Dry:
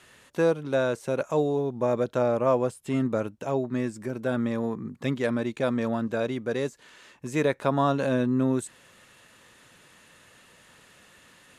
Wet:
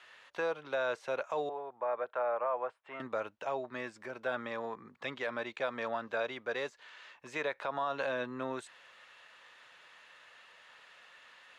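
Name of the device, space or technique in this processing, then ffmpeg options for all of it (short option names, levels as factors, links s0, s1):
DJ mixer with the lows and highs turned down: -filter_complex "[0:a]asettb=1/sr,asplit=3[s0][s1][s2];[s0]atrim=end=1.494[s3];[s1]atrim=start=1.49:end=3,asetpts=PTS-STARTPTS,afade=t=in:d=0.004:c=qsin,afade=t=out:st=1.506:d=0.004:c=qsin,acrossover=split=480 2200:gain=0.2 1 0.0708[s4][s5][s6];[s4][s5][s6]amix=inputs=3:normalize=0[s7];[s2]atrim=start=2.996[s8];[s3][s7]acrossfade=d=0.004:c1=hsin:c2=qsin[s9];[s9][s8]acrossfade=d=0.004:c1=qsin:c2=hsin,acrossover=split=570 4800:gain=0.0794 1 0.0891[s10][s11][s12];[s10][s11][s12]amix=inputs=3:normalize=0,alimiter=level_in=1.06:limit=0.0631:level=0:latency=1:release=83,volume=0.944"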